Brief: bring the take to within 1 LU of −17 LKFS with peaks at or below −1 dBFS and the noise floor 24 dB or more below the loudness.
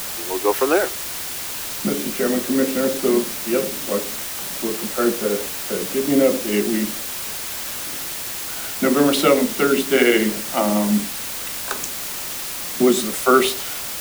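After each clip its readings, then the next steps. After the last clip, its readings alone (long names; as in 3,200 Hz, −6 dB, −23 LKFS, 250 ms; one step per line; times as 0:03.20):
background noise floor −29 dBFS; target noise floor −45 dBFS; integrated loudness −20.5 LKFS; sample peak −2.0 dBFS; target loudness −17.0 LKFS
→ broadband denoise 16 dB, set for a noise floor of −29 dBFS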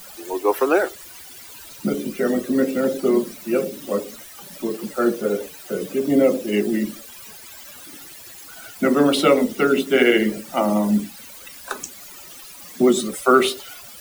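background noise floor −41 dBFS; target noise floor −45 dBFS
→ broadband denoise 6 dB, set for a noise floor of −41 dBFS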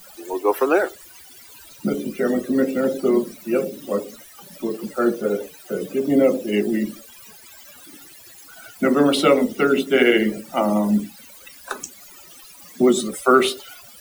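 background noise floor −45 dBFS; integrated loudness −20.5 LKFS; sample peak −2.0 dBFS; target loudness −17.0 LKFS
→ level +3.5 dB
brickwall limiter −1 dBFS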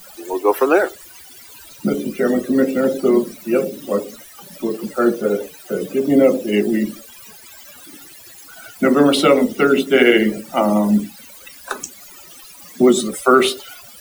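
integrated loudness −17.0 LKFS; sample peak −1.0 dBFS; background noise floor −42 dBFS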